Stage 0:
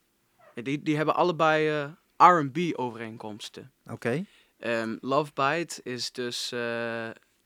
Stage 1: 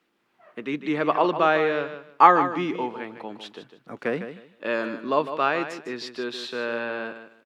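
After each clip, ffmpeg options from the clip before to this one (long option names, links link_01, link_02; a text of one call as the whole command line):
ffmpeg -i in.wav -filter_complex "[0:a]acrossover=split=190 4000:gain=0.112 1 0.141[link_01][link_02][link_03];[link_01][link_02][link_03]amix=inputs=3:normalize=0,aecho=1:1:153|306|459:0.299|0.0657|0.0144,volume=2.5dB" out.wav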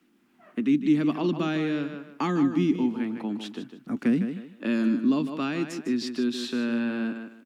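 ffmpeg -i in.wav -filter_complex "[0:a]equalizer=frequency=125:width_type=o:width=1:gain=-5,equalizer=frequency=250:width_type=o:width=1:gain=12,equalizer=frequency=500:width_type=o:width=1:gain=-11,equalizer=frequency=1000:width_type=o:width=1:gain=-6,equalizer=frequency=2000:width_type=o:width=1:gain=-4,equalizer=frequency=4000:width_type=o:width=1:gain=-6,acrossover=split=290|3000[link_01][link_02][link_03];[link_02]acompressor=threshold=-41dB:ratio=4[link_04];[link_01][link_04][link_03]amix=inputs=3:normalize=0,volume=6.5dB" out.wav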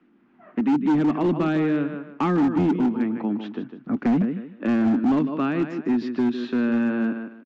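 ffmpeg -i in.wav -af "lowpass=1800,aresample=16000,volume=22dB,asoftclip=hard,volume=-22dB,aresample=44100,volume=5.5dB" out.wav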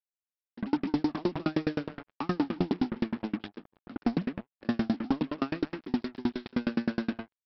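ffmpeg -i in.wav -af "aresample=11025,acrusher=bits=4:mix=0:aa=0.5,aresample=44100,aeval=exprs='val(0)*pow(10,-35*if(lt(mod(9.6*n/s,1),2*abs(9.6)/1000),1-mod(9.6*n/s,1)/(2*abs(9.6)/1000),(mod(9.6*n/s,1)-2*abs(9.6)/1000)/(1-2*abs(9.6)/1000))/20)':channel_layout=same" out.wav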